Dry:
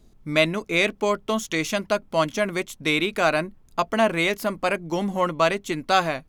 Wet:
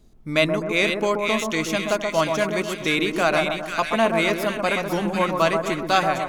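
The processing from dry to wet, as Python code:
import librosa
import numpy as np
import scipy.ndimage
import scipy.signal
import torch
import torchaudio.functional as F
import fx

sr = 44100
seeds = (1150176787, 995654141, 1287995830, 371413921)

y = fx.echo_split(x, sr, split_hz=1400.0, low_ms=129, high_ms=496, feedback_pct=52, wet_db=-4.5)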